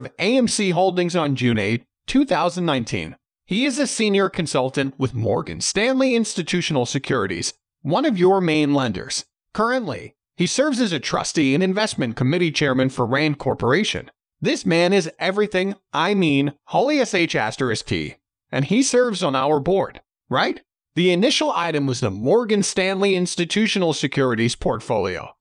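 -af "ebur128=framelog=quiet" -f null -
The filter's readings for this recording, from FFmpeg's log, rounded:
Integrated loudness:
  I:         -20.3 LUFS
  Threshold: -30.5 LUFS
Loudness range:
  LRA:         1.7 LU
  Threshold: -40.6 LUFS
  LRA low:   -21.4 LUFS
  LRA high:  -19.7 LUFS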